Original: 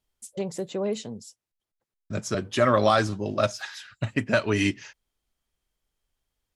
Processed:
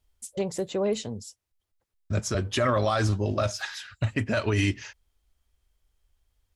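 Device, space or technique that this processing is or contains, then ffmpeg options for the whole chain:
car stereo with a boomy subwoofer: -af "lowshelf=f=110:t=q:w=1.5:g=9,alimiter=limit=-18dB:level=0:latency=1:release=31,volume=2.5dB"

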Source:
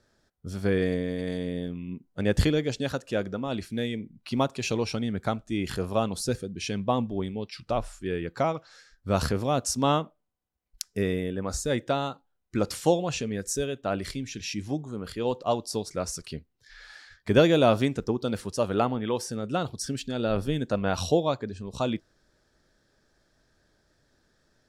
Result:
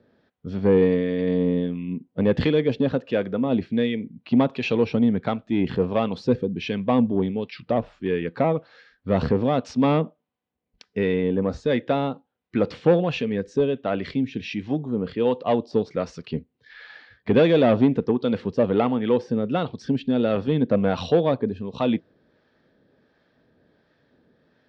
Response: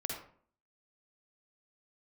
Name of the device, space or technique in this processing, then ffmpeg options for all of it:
guitar amplifier with harmonic tremolo: -filter_complex "[0:a]acrossover=split=740[a][b];[a]aeval=exprs='val(0)*(1-0.5/2+0.5/2*cos(2*PI*1.4*n/s))':c=same[c];[b]aeval=exprs='val(0)*(1-0.5/2-0.5/2*cos(2*PI*1.4*n/s))':c=same[d];[c][d]amix=inputs=2:normalize=0,asoftclip=type=tanh:threshold=-21.5dB,highpass=100,equalizer=f=170:t=q:w=4:g=4,equalizer=f=250:t=q:w=4:g=7,equalizer=f=470:t=q:w=4:g=6,equalizer=f=1.4k:t=q:w=4:g=-4,lowpass=f=3.5k:w=0.5412,lowpass=f=3.5k:w=1.3066,volume=7dB"

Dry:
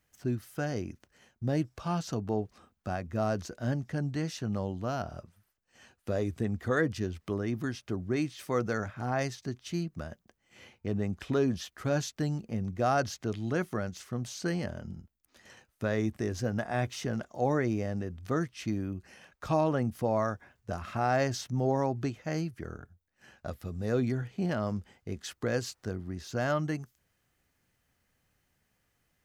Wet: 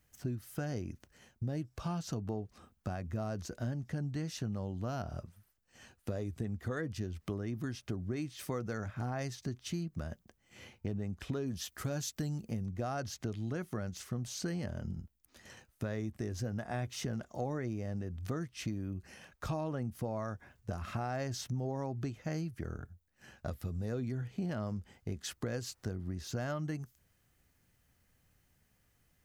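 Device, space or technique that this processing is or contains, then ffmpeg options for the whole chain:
ASMR close-microphone chain: -filter_complex "[0:a]lowshelf=f=200:g=7.5,acompressor=threshold=-33dB:ratio=6,highshelf=f=6.7k:g=5.5,asettb=1/sr,asplit=3[a][b][c];[a]atrim=end=11.464[d];[b]atrim=start=11.46:end=12.66,asetpts=PTS-STARTPTS,afade=t=in:d=0.004:c=qsin,afade=t=out:st=1.196:d=0.004:c=qsin,highshelf=f=5.7k:g=9[e];[c]atrim=start=12.656[f];[d][e]acrossfade=d=0.004:c1=hsin:c2=qsin[g];[g][f]acrossfade=d=0.004:c1=qsin:c2=hsin,volume=-1dB"

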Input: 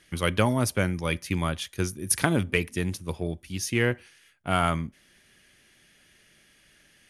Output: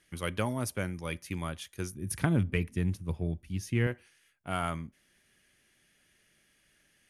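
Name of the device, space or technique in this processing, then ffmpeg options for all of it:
exciter from parts: -filter_complex "[0:a]asettb=1/sr,asplit=3[a][b][c];[a]atrim=end=1.944[d];[b]atrim=start=1.94:end=3.87,asetpts=PTS-STARTPTS,afade=t=in:d=0.004:c=qsin,afade=t=out:st=1.926:d=0.004:c=qsin,bass=f=250:g=10,treble=f=4k:g=-6[e];[c]atrim=start=3.866[f];[d][e]acrossfade=d=0.004:c1=hsin:c2=qsin[g];[g][f]acrossfade=d=0.004:c1=qsin:c2=hsin,asplit=2[h][i];[i]highpass=4.6k,asoftclip=type=tanh:threshold=-22dB,highpass=2.3k,volume=-8.5dB[j];[h][j]amix=inputs=2:normalize=0,volume=-8.5dB"

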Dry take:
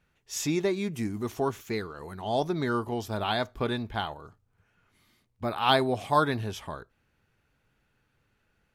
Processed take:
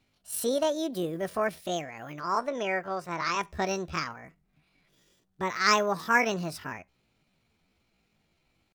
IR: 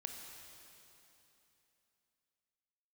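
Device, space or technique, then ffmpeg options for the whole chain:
chipmunk voice: -filter_complex "[0:a]asettb=1/sr,asplit=3[a][b][c];[a]atrim=end=2.234[d];[b]atrim=start=2.23:end=3.42,asetpts=PTS-STARTPTS,afade=t=in:d=0.004:c=qsin,afade=t=out:st=1.186:d=0.004:c=qsin,bass=f=250:g=-6,treble=f=4k:g=-12[e];[c]atrim=start=3.416[f];[d][e]acrossfade=d=0.004:c1=hsin:c2=qsin[g];[g][f]acrossfade=d=0.004:c1=qsin:c2=hsin,asetrate=70004,aresample=44100,atempo=0.629961"

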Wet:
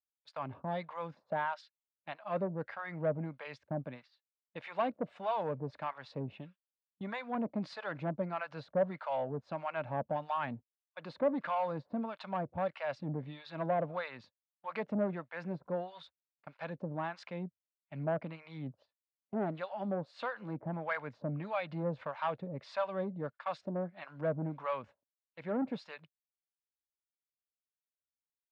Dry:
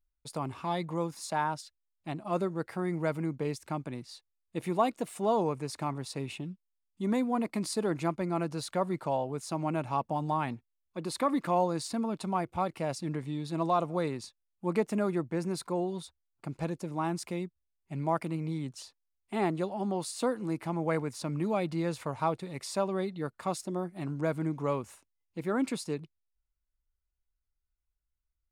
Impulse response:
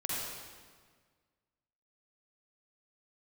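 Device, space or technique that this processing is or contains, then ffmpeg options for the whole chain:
guitar amplifier with harmonic tremolo: -filter_complex "[0:a]agate=range=-18dB:threshold=-44dB:ratio=16:detection=peak,acrossover=split=760[a][b];[a]aeval=exprs='val(0)*(1-1/2+1/2*cos(2*PI*1.6*n/s))':c=same[c];[b]aeval=exprs='val(0)*(1-1/2-1/2*cos(2*PI*1.6*n/s))':c=same[d];[c][d]amix=inputs=2:normalize=0,asoftclip=type=tanh:threshold=-28dB,highpass=100,equalizer=f=350:t=q:w=4:g=-9,equalizer=f=580:t=q:w=4:g=9,equalizer=f=1.6k:t=q:w=4:g=6,lowpass=f=3.7k:w=0.5412,lowpass=f=3.7k:w=1.3066,volume=1dB"

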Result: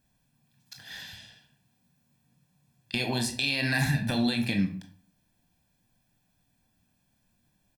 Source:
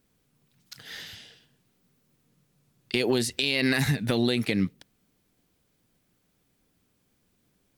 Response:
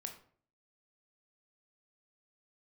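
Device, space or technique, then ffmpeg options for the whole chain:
microphone above a desk: -filter_complex "[0:a]aecho=1:1:1.2:0.71[a];[1:a]atrim=start_sample=2205[b];[a][b]afir=irnorm=-1:irlink=0"

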